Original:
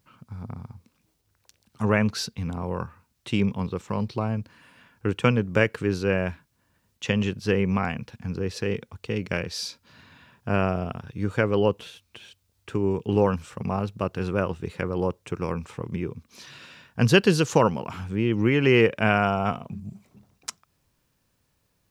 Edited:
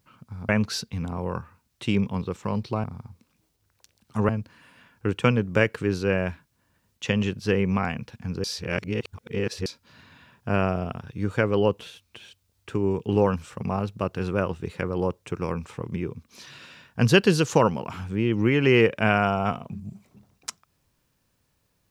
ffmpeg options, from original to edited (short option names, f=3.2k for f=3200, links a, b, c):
-filter_complex "[0:a]asplit=6[a][b][c][d][e][f];[a]atrim=end=0.492[g];[b]atrim=start=1.938:end=4.292[h];[c]atrim=start=0.488:end=1.942[i];[d]atrim=start=4.288:end=8.442[j];[e]atrim=start=8.438:end=9.662,asetpts=PTS-STARTPTS,areverse[k];[f]atrim=start=9.658[l];[g][h]acrossfade=d=0.004:c1=hsin:c2=hsin[m];[m][i]acrossfade=d=0.004:c1=hsin:c2=hsin[n];[n][j]acrossfade=d=0.004:c1=hsin:c2=hsin[o];[o][k]acrossfade=d=0.004:c1=hsin:c2=hsin[p];[p][l]acrossfade=d=0.004:c1=hsin:c2=hsin"